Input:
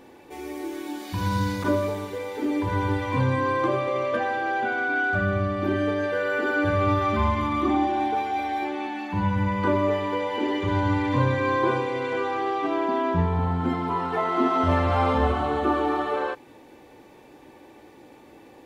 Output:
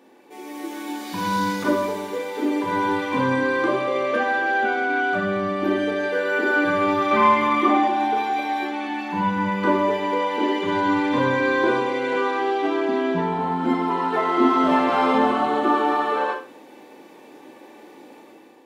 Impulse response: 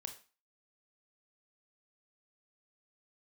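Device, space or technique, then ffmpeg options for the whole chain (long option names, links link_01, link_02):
far laptop microphone: -filter_complex "[1:a]atrim=start_sample=2205[link_01];[0:a][link_01]afir=irnorm=-1:irlink=0,highpass=frequency=190:width=0.5412,highpass=frequency=190:width=1.3066,dynaudnorm=framelen=140:gausssize=7:maxgain=8dB,asettb=1/sr,asplit=3[link_02][link_03][link_04];[link_02]atrim=end=7.114[link_05];[link_03]atrim=start=7.11:end=7.88,asetpts=PTS-STARTPTS,afade=type=in:duration=0.004:curve=qsin,afade=type=out:start_time=0.766:duration=0.004:curve=qsin,equalizer=frequency=250:width_type=o:width=1:gain=-4,equalizer=frequency=500:width_type=o:width=1:gain=7,equalizer=frequency=2000:width_type=o:width=1:gain=6[link_06];[link_04]atrim=start=7.876[link_07];[link_05][link_06]acrossfade=duration=0.004:curve1=hsin:curve2=qsin[link_08];[link_08][link_07]acrossfade=duration=0.004:curve1=qsin:curve2=hsin"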